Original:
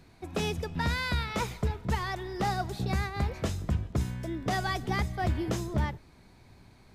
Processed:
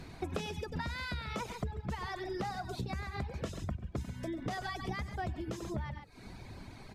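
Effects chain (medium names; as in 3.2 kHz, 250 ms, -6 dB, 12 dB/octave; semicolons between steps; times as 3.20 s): treble shelf 12 kHz -8.5 dB; on a send: loudspeakers at several distances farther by 32 m -8 dB, 47 m -10 dB; on the sum: compression 12:1, threshold -42 dBFS, peak gain reduction 19 dB; reverb removal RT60 0.82 s; trim +8.5 dB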